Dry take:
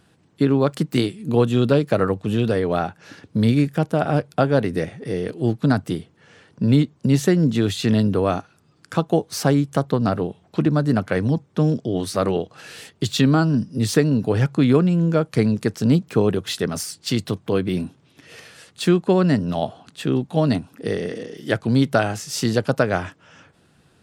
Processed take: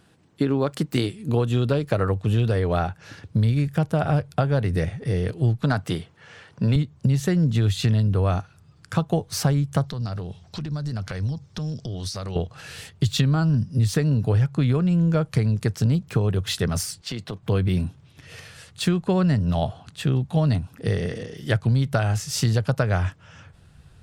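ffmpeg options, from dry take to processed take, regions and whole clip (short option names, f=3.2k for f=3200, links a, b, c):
-filter_complex "[0:a]asettb=1/sr,asplit=3[a][b][c];[a]atrim=end=5.634[d];[b]atrim=start=5.63:end=6.76,asetpts=PTS-STARTPTS,afade=t=in:d=0.004:c=qsin,afade=t=out:st=1.126:d=0.004:c=qsin,highpass=f=490:p=1,highshelf=f=5.4k:g=-6.5,acontrast=59[e];[c]atrim=start=6.756[f];[d][e]acrossfade=d=0.004:c1=hsin:c2=qsin[g];[g][f]acrossfade=d=0.004:c1=qsin:c2=hsin,asettb=1/sr,asplit=3[h][i][j];[h]atrim=end=9.834[k];[i]atrim=start=9.83:end=12.36,asetpts=PTS-STARTPTS,afade=t=in:d=0.004:c=qsin,afade=t=out:st=2.526:d=0.004:c=qsin,equalizer=f=5.2k:t=o:w=1.1:g=14,acompressor=threshold=-30dB:ratio=5:attack=3.2:release=140:knee=1:detection=peak[l];[j]atrim=start=12.356[m];[k][l]acrossfade=d=0.004:c1=hsin:c2=qsin[n];[n][m]acrossfade=d=0.004:c1=qsin:c2=hsin,asettb=1/sr,asplit=3[o][p][q];[o]atrim=end=17.014[r];[p]atrim=start=17.01:end=17.43,asetpts=PTS-STARTPTS,afade=t=in:d=0.004:c=qsin,afade=t=out:st=0.416:d=0.004:c=qsin,highpass=220,aemphasis=mode=reproduction:type=50kf,acompressor=threshold=-26dB:ratio=4:attack=3.2:release=140:knee=1:detection=peak[s];[q]atrim=start=17.426[t];[r][s]acrossfade=d=0.004:c1=hsin:c2=qsin[u];[u][t]acrossfade=d=0.004:c1=qsin:c2=hsin,asubboost=boost=11:cutoff=84,acompressor=threshold=-17dB:ratio=6"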